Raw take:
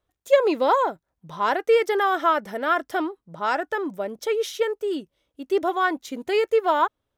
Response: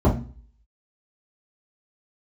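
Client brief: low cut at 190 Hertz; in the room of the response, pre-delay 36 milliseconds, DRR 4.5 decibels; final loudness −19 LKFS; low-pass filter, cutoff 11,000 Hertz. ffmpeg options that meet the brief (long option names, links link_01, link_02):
-filter_complex "[0:a]highpass=190,lowpass=11000,asplit=2[link_01][link_02];[1:a]atrim=start_sample=2205,adelay=36[link_03];[link_02][link_03]afir=irnorm=-1:irlink=0,volume=-22.5dB[link_04];[link_01][link_04]amix=inputs=2:normalize=0,volume=1.5dB"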